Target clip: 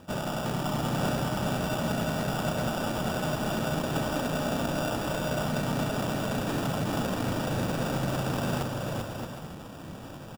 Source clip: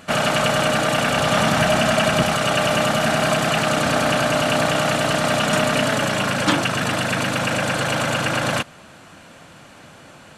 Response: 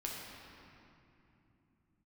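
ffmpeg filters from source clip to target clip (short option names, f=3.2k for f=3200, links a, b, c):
-af "lowpass=f=3.7k:w=0.5412,lowpass=f=3.7k:w=1.3066,equalizer=f=1k:t=o:w=1.7:g=-4.5,acrusher=samples=21:mix=1:aa=0.000001,areverse,acompressor=threshold=-29dB:ratio=12,areverse,lowshelf=f=280:g=4.5,aeval=exprs='0.0596*(abs(mod(val(0)/0.0596+3,4)-2)-1)':c=same,aecho=1:1:390|624|764.4|848.6|899.2:0.631|0.398|0.251|0.158|0.1"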